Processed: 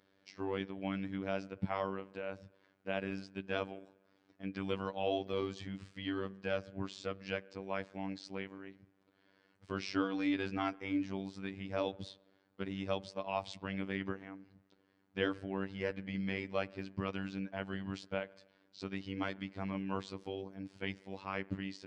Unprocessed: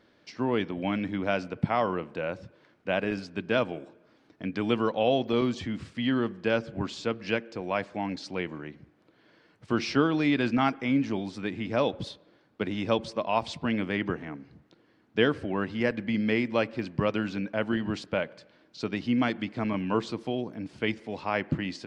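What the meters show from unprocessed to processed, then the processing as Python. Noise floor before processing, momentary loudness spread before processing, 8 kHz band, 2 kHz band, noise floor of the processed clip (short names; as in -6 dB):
-64 dBFS, 10 LU, n/a, -10.0 dB, -73 dBFS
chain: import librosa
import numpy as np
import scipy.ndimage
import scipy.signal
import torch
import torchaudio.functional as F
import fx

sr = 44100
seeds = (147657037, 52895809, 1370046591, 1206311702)

y = fx.robotise(x, sr, hz=96.7)
y = y * 10.0 ** (-7.5 / 20.0)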